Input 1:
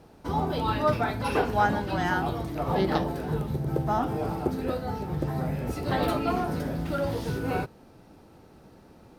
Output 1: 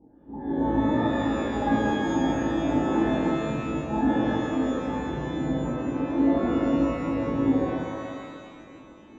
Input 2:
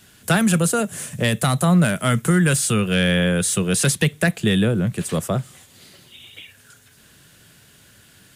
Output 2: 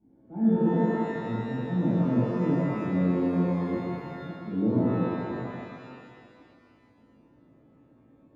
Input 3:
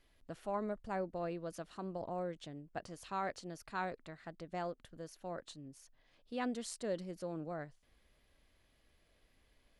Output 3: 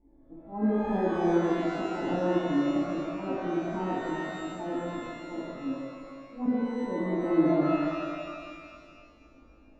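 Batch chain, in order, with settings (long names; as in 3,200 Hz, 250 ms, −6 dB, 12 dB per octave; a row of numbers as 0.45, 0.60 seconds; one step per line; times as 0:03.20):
formant resonators in series u
volume swells 178 ms
reverb with rising layers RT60 2 s, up +12 semitones, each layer −8 dB, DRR −8.5 dB
normalise the peak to −12 dBFS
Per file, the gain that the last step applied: +3.5, −3.5, +17.0 decibels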